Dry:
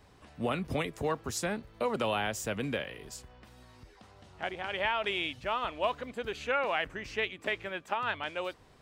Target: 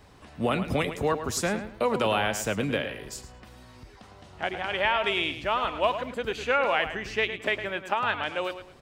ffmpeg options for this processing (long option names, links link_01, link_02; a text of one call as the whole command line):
ffmpeg -i in.wav -filter_complex "[0:a]asplit=2[link_01][link_02];[link_02]adelay=108,lowpass=frequency=4700:poles=1,volume=-10dB,asplit=2[link_03][link_04];[link_04]adelay=108,lowpass=frequency=4700:poles=1,volume=0.28,asplit=2[link_05][link_06];[link_06]adelay=108,lowpass=frequency=4700:poles=1,volume=0.28[link_07];[link_01][link_03][link_05][link_07]amix=inputs=4:normalize=0,volume=5.5dB" out.wav